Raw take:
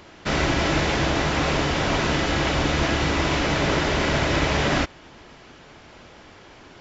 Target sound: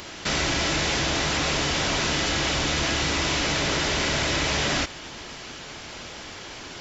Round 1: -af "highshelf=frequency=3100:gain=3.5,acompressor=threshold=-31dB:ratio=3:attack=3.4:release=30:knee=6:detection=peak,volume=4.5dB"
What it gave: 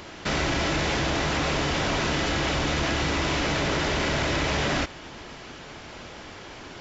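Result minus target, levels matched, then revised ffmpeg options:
8,000 Hz band −5.0 dB
-af "highshelf=frequency=3100:gain=14,acompressor=threshold=-31dB:ratio=3:attack=3.4:release=30:knee=6:detection=peak,volume=4.5dB"

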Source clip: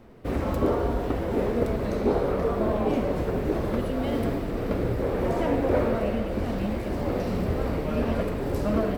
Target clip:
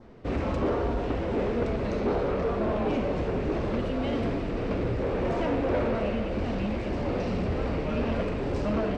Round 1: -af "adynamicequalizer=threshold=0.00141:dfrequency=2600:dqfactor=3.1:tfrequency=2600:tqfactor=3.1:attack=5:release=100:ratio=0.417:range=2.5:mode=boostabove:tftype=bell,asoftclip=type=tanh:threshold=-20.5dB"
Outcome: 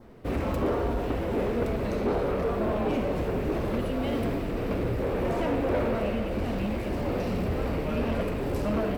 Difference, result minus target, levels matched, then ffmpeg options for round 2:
8,000 Hz band +4.5 dB
-af "adynamicequalizer=threshold=0.00141:dfrequency=2600:dqfactor=3.1:tfrequency=2600:tqfactor=3.1:attack=5:release=100:ratio=0.417:range=2.5:mode=boostabove:tftype=bell,lowpass=frequency=6700:width=0.5412,lowpass=frequency=6700:width=1.3066,asoftclip=type=tanh:threshold=-20.5dB"

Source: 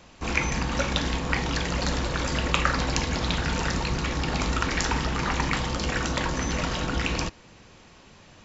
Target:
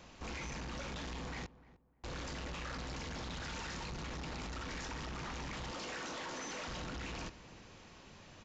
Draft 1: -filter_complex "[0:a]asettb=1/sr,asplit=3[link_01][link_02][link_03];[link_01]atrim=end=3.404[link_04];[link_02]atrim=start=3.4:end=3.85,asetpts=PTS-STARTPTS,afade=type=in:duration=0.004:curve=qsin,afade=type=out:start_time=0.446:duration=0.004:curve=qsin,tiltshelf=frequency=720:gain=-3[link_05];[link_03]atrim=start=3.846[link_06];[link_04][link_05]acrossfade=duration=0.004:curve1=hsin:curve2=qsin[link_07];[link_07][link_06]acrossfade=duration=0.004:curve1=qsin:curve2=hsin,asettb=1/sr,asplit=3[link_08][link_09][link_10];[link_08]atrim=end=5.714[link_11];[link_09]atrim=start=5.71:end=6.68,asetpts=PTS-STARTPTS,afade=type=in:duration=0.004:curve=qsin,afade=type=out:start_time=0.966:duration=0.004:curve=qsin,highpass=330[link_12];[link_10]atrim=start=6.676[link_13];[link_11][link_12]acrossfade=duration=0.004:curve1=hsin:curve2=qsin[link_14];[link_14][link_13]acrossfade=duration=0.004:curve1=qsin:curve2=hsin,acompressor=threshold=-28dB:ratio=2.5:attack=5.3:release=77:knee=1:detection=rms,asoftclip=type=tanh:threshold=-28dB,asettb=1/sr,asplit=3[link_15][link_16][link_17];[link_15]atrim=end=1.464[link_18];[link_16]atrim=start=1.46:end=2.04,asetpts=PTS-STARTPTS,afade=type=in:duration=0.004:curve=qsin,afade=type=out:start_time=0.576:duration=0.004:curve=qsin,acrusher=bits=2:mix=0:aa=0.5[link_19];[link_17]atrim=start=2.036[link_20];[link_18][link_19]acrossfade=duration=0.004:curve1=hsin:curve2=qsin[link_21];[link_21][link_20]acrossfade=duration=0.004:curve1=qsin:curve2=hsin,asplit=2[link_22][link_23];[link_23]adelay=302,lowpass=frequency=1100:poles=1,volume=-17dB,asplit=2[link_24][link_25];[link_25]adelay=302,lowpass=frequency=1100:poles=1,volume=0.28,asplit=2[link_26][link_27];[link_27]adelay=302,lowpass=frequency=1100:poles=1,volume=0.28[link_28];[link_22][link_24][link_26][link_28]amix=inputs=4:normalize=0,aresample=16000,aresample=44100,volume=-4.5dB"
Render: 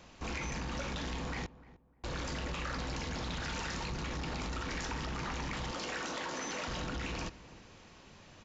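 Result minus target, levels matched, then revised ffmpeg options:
soft clipping: distortion −6 dB
-filter_complex "[0:a]asettb=1/sr,asplit=3[link_01][link_02][link_03];[link_01]atrim=end=3.404[link_04];[link_02]atrim=start=3.4:end=3.85,asetpts=PTS-STARTPTS,afade=type=in:duration=0.004:curve=qsin,afade=type=out:start_time=0.446:duration=0.004:curve=qsin,tiltshelf=frequency=720:gain=-3[link_05];[link_03]atrim=start=3.846[link_06];[link_04][link_05]acrossfade=duration=0.004:curve1=hsin:curve2=qsin[link_07];[link_07][link_06]acrossfade=duration=0.004:curve1=qsin:curve2=hsin,asettb=1/sr,asplit=3[link_08][link_09][link_10];[link_08]atrim=end=5.714[link_11];[link_09]atrim=start=5.71:end=6.68,asetpts=PTS-STARTPTS,afade=type=in:duration=0.004:curve=qsin,afade=type=out:start_time=0.966:duration=0.004:curve=qsin,highpass=330[link_12];[link_10]atrim=start=6.676[link_13];[link_11][link_12]acrossfade=duration=0.004:curve1=hsin:curve2=qsin[link_14];[link_14][link_13]acrossfade=duration=0.004:curve1=qsin:curve2=hsin,acompressor=threshold=-28dB:ratio=2.5:attack=5.3:release=77:knee=1:detection=rms,asoftclip=type=tanh:threshold=-36dB,asettb=1/sr,asplit=3[link_15][link_16][link_17];[link_15]atrim=end=1.464[link_18];[link_16]atrim=start=1.46:end=2.04,asetpts=PTS-STARTPTS,afade=type=in:duration=0.004:curve=qsin,afade=type=out:start_time=0.576:duration=0.004:curve=qsin,acrusher=bits=2:mix=0:aa=0.5[link_19];[link_17]atrim=start=2.036[link_20];[link_18][link_19]acrossfade=duration=0.004:curve1=hsin:curve2=qsin[link_21];[link_21][link_20]acrossfade=duration=0.004:curve1=qsin:curve2=hsin,asplit=2[link_22][link_23];[link_23]adelay=302,lowpass=frequency=1100:poles=1,volume=-17dB,asplit=2[link_24][link_25];[link_25]adelay=302,lowpass=frequency=1100:poles=1,volume=0.28,asplit=2[link_26][link_27];[link_27]adelay=302,lowpass=frequency=1100:poles=1,volume=0.28[link_28];[link_22][link_24][link_26][link_28]amix=inputs=4:normalize=0,aresample=16000,aresample=44100,volume=-4.5dB"

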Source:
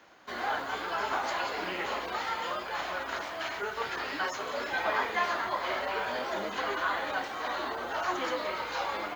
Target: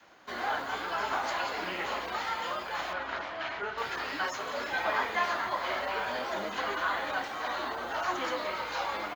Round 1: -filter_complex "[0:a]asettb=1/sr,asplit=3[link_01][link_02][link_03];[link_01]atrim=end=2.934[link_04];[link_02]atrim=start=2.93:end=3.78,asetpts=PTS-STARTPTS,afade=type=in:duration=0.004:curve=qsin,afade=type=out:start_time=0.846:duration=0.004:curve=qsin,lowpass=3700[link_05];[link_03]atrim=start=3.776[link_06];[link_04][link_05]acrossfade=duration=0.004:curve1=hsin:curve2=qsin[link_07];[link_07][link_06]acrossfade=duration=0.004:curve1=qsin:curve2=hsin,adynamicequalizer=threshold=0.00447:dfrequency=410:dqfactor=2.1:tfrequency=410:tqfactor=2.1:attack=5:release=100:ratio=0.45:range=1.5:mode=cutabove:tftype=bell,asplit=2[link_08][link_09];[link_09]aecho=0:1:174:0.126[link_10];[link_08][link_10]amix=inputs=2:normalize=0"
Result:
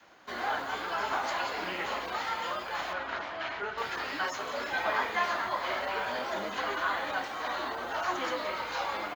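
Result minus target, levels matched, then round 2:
echo 95 ms early
-filter_complex "[0:a]asettb=1/sr,asplit=3[link_01][link_02][link_03];[link_01]atrim=end=2.934[link_04];[link_02]atrim=start=2.93:end=3.78,asetpts=PTS-STARTPTS,afade=type=in:duration=0.004:curve=qsin,afade=type=out:start_time=0.846:duration=0.004:curve=qsin,lowpass=3700[link_05];[link_03]atrim=start=3.776[link_06];[link_04][link_05]acrossfade=duration=0.004:curve1=hsin:curve2=qsin[link_07];[link_07][link_06]acrossfade=duration=0.004:curve1=qsin:curve2=hsin,adynamicequalizer=threshold=0.00447:dfrequency=410:dqfactor=2.1:tfrequency=410:tqfactor=2.1:attack=5:release=100:ratio=0.45:range=1.5:mode=cutabove:tftype=bell,asplit=2[link_08][link_09];[link_09]aecho=0:1:269:0.126[link_10];[link_08][link_10]amix=inputs=2:normalize=0"

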